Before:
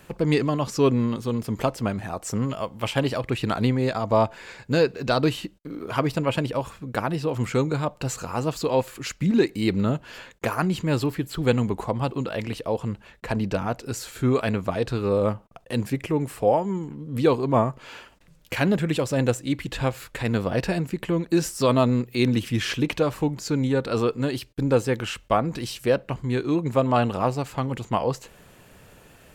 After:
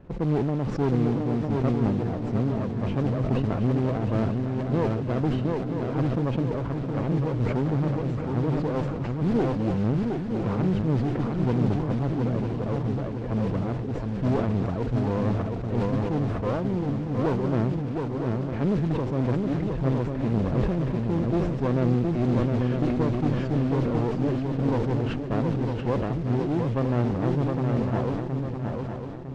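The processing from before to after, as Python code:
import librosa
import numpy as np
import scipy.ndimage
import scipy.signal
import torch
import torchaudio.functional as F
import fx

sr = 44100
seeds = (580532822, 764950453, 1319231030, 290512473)

y = np.where(x < 0.0, 10.0 ** (-7.0 / 20.0) * x, x)
y = fx.tilt_shelf(y, sr, db=8.0, hz=910.0)
y = fx.mod_noise(y, sr, seeds[0], snr_db=14)
y = fx.clip_asym(y, sr, top_db=-27.0, bottom_db=-13.5)
y = fx.spacing_loss(y, sr, db_at_10k=37)
y = fx.echo_swing(y, sr, ms=955, ratio=3, feedback_pct=41, wet_db=-4.5)
y = fx.sustainer(y, sr, db_per_s=32.0)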